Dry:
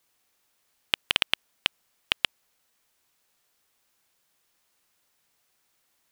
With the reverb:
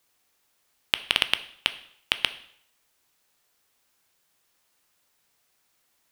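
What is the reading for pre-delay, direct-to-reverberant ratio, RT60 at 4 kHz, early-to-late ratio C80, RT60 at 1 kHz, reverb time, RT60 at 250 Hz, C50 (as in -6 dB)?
6 ms, 11.5 dB, 0.60 s, 18.5 dB, 0.65 s, 0.65 s, 0.60 s, 15.5 dB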